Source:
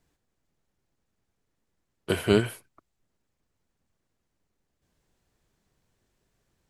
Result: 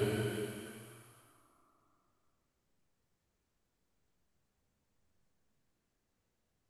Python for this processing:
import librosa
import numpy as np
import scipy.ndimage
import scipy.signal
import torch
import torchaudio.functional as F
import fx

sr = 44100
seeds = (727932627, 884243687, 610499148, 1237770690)

y = fx.paulstretch(x, sr, seeds[0], factor=4.1, window_s=1.0, from_s=2.63)
y = y * librosa.db_to_amplitude(-1.5)